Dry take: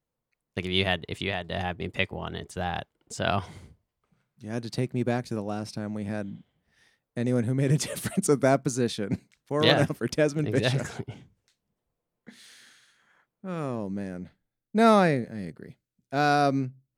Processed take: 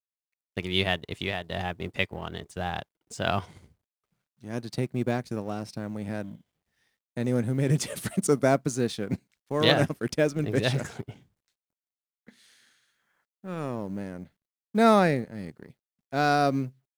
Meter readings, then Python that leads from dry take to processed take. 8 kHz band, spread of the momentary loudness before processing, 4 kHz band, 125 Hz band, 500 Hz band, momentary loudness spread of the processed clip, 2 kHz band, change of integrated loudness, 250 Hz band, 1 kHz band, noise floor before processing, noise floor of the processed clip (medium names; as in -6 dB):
-1.5 dB, 16 LU, -0.5 dB, -1.0 dB, -0.5 dB, 16 LU, -0.5 dB, -0.5 dB, -0.5 dB, -0.5 dB, under -85 dBFS, under -85 dBFS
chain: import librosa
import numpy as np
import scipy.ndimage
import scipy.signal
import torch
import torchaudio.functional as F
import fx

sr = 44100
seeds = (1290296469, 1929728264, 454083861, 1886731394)

y = fx.law_mismatch(x, sr, coded='A')